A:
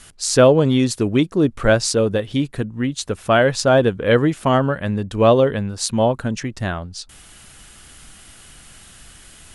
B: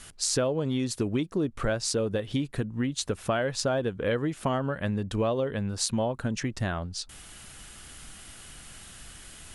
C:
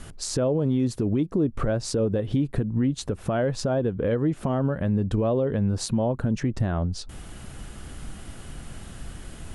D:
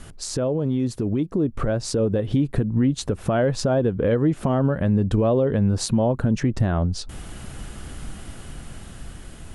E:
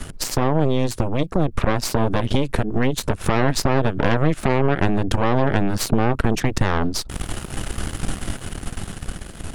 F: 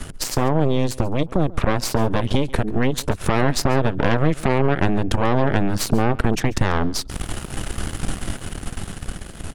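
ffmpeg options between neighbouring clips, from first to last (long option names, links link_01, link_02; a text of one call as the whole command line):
ffmpeg -i in.wav -af "acompressor=threshold=-22dB:ratio=6,volume=-2.5dB" out.wav
ffmpeg -i in.wav -af "tiltshelf=frequency=1100:gain=8,alimiter=limit=-19.5dB:level=0:latency=1:release=173,volume=4.5dB" out.wav
ffmpeg -i in.wav -af "dynaudnorm=framelen=550:gausssize=7:maxgain=4dB" out.wav
ffmpeg -i in.wav -filter_complex "[0:a]acrossover=split=170|860[link_01][link_02][link_03];[link_01]acompressor=threshold=-30dB:ratio=4[link_04];[link_02]acompressor=threshold=-31dB:ratio=4[link_05];[link_03]acompressor=threshold=-34dB:ratio=4[link_06];[link_04][link_05][link_06]amix=inputs=3:normalize=0,aeval=exprs='0.2*(cos(1*acos(clip(val(0)/0.2,-1,1)))-cos(1*PI/2))+0.0708*(cos(6*acos(clip(val(0)/0.2,-1,1)))-cos(6*PI/2))':channel_layout=same,volume=6dB" out.wav
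ffmpeg -i in.wav -af "aecho=1:1:139:0.0841" out.wav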